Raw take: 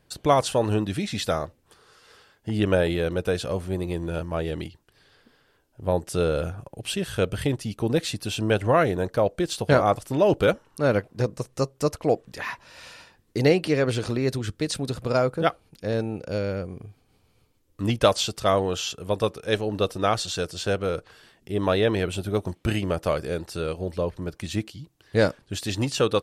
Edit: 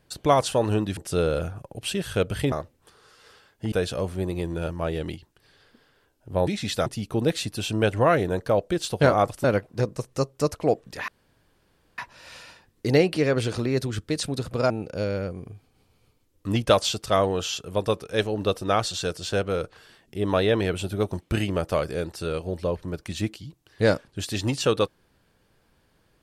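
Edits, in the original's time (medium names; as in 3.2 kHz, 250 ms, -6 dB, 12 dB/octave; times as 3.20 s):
0.97–1.36 s: swap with 5.99–7.54 s
2.56–3.24 s: delete
10.12–10.85 s: delete
12.49 s: insert room tone 0.90 s
15.21–16.04 s: delete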